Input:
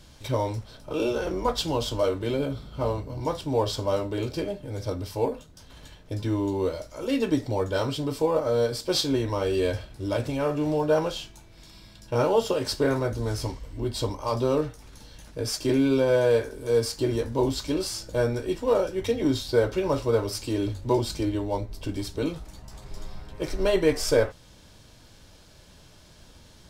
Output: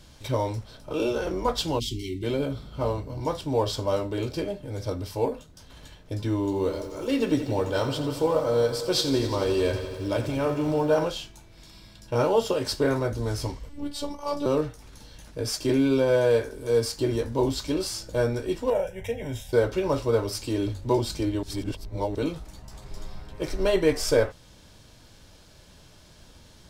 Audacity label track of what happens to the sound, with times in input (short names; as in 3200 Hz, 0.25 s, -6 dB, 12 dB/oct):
1.790000	2.230000	spectral delete 430–1900 Hz
6.350000	11.050000	lo-fi delay 87 ms, feedback 80%, word length 9-bit, level -12 dB
13.690000	14.460000	robotiser 288 Hz
18.700000	19.530000	fixed phaser centre 1200 Hz, stages 6
21.430000	22.150000	reverse